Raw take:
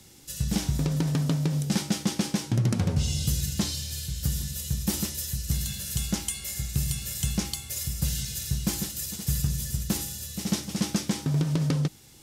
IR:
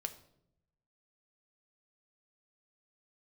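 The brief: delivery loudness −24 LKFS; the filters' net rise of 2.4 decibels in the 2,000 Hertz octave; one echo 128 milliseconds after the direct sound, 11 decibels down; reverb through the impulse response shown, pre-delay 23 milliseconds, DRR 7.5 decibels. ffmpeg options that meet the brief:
-filter_complex "[0:a]equalizer=frequency=2000:width_type=o:gain=3,aecho=1:1:128:0.282,asplit=2[link_01][link_02];[1:a]atrim=start_sample=2205,adelay=23[link_03];[link_02][link_03]afir=irnorm=-1:irlink=0,volume=-6dB[link_04];[link_01][link_04]amix=inputs=2:normalize=0,volume=4dB"

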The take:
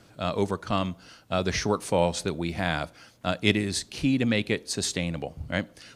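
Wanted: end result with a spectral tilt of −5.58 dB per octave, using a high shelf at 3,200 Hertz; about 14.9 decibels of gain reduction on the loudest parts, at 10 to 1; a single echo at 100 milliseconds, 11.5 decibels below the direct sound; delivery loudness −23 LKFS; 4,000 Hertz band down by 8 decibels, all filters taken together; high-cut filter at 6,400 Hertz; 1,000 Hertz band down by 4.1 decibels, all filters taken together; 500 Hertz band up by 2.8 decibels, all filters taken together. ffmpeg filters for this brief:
ffmpeg -i in.wav -af "lowpass=6400,equalizer=frequency=500:width_type=o:gain=5.5,equalizer=frequency=1000:width_type=o:gain=-7.5,highshelf=frequency=3200:gain=-3,equalizer=frequency=4000:width_type=o:gain=-7,acompressor=threshold=-32dB:ratio=10,aecho=1:1:100:0.266,volume=15dB" out.wav

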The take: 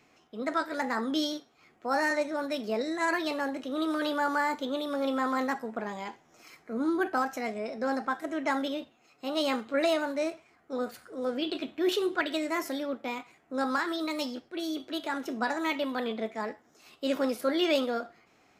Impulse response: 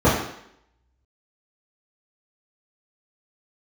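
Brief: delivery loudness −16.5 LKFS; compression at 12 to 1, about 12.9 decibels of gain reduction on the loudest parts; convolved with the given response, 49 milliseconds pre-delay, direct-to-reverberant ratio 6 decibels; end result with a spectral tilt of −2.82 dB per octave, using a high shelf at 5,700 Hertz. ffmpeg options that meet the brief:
-filter_complex "[0:a]highshelf=frequency=5700:gain=-3.5,acompressor=threshold=-36dB:ratio=12,asplit=2[link_01][link_02];[1:a]atrim=start_sample=2205,adelay=49[link_03];[link_02][link_03]afir=irnorm=-1:irlink=0,volume=-29dB[link_04];[link_01][link_04]amix=inputs=2:normalize=0,volume=22dB"

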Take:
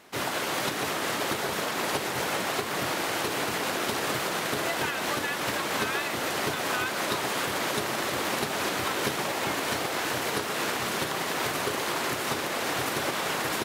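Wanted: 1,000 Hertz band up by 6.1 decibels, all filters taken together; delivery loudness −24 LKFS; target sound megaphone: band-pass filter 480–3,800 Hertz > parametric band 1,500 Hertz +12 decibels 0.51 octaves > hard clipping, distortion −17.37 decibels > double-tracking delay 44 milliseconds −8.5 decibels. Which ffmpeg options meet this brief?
ffmpeg -i in.wav -filter_complex "[0:a]highpass=480,lowpass=3800,equalizer=frequency=1000:width_type=o:gain=3,equalizer=frequency=1500:width_type=o:width=0.51:gain=12,asoftclip=type=hard:threshold=-19dB,asplit=2[link_01][link_02];[link_02]adelay=44,volume=-8.5dB[link_03];[link_01][link_03]amix=inputs=2:normalize=0,volume=-0.5dB" out.wav

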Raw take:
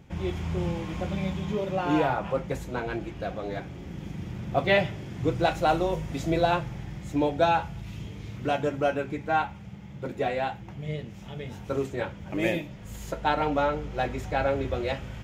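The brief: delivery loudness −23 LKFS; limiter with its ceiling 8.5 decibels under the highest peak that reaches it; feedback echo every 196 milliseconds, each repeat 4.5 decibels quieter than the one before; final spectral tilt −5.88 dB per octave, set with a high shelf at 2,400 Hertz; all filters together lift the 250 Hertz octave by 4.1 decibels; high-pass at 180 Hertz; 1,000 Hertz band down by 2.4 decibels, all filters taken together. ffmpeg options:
ffmpeg -i in.wav -af "highpass=180,equalizer=frequency=250:width_type=o:gain=7.5,equalizer=frequency=1000:width_type=o:gain=-3.5,highshelf=frequency=2400:gain=-4.5,alimiter=limit=-18.5dB:level=0:latency=1,aecho=1:1:196|392|588|784|980|1176|1372|1568|1764:0.596|0.357|0.214|0.129|0.0772|0.0463|0.0278|0.0167|0.01,volume=6dB" out.wav

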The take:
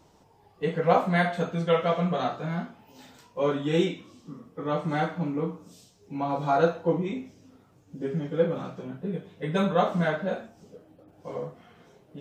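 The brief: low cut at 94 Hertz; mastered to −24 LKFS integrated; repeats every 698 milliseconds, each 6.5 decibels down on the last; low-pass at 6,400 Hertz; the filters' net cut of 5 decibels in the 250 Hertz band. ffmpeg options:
ffmpeg -i in.wav -af "highpass=94,lowpass=6400,equalizer=frequency=250:width_type=o:gain=-8,aecho=1:1:698|1396|2094|2792|3490|4188:0.473|0.222|0.105|0.0491|0.0231|0.0109,volume=6dB" out.wav

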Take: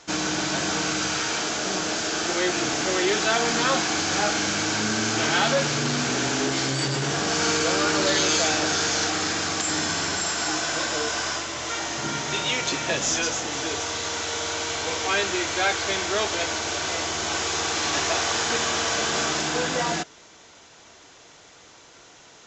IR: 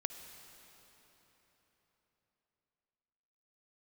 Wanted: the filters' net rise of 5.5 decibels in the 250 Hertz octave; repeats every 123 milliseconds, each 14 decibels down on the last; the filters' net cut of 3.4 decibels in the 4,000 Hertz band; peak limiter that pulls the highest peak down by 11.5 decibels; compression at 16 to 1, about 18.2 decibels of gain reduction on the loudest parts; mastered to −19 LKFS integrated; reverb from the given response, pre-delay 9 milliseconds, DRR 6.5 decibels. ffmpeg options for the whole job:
-filter_complex "[0:a]equalizer=frequency=250:width_type=o:gain=7.5,equalizer=frequency=4000:width_type=o:gain=-4.5,acompressor=threshold=-36dB:ratio=16,alimiter=level_in=13dB:limit=-24dB:level=0:latency=1,volume=-13dB,aecho=1:1:123|246:0.2|0.0399,asplit=2[link_01][link_02];[1:a]atrim=start_sample=2205,adelay=9[link_03];[link_02][link_03]afir=irnorm=-1:irlink=0,volume=-6.5dB[link_04];[link_01][link_04]amix=inputs=2:normalize=0,volume=24.5dB"

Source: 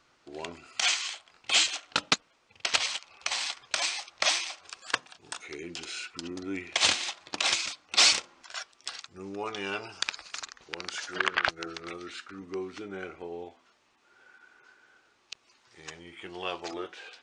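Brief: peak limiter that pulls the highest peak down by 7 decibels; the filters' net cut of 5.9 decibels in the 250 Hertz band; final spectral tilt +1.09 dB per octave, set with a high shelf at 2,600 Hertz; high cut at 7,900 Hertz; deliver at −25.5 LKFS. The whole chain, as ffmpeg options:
ffmpeg -i in.wav -af "lowpass=7900,equalizer=frequency=250:width_type=o:gain=-9,highshelf=frequency=2600:gain=5.5,volume=3.5dB,alimiter=limit=-9.5dB:level=0:latency=1" out.wav

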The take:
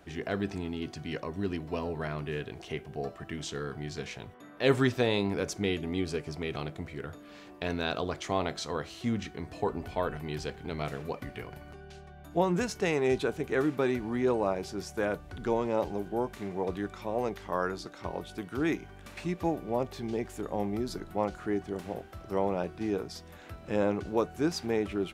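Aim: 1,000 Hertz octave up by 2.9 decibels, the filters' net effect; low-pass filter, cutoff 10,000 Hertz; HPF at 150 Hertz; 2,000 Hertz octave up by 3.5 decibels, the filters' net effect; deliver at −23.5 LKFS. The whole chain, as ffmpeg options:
ffmpeg -i in.wav -af "highpass=150,lowpass=10000,equalizer=frequency=1000:width_type=o:gain=3,equalizer=frequency=2000:width_type=o:gain=3.5,volume=8.5dB" out.wav

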